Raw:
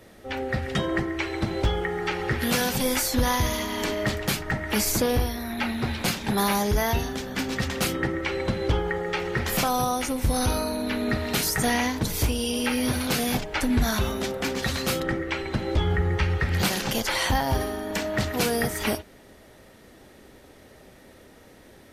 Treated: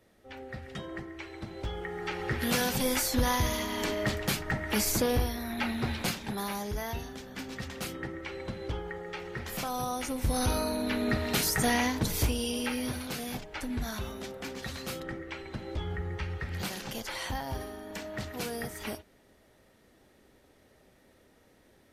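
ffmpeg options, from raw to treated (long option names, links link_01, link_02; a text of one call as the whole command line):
ffmpeg -i in.wav -af "volume=4.5dB,afade=type=in:start_time=1.56:duration=1:silence=0.316228,afade=type=out:start_time=5.94:duration=0.44:silence=0.421697,afade=type=in:start_time=9.56:duration=1.12:silence=0.375837,afade=type=out:start_time=12.14:duration=0.95:silence=0.375837" out.wav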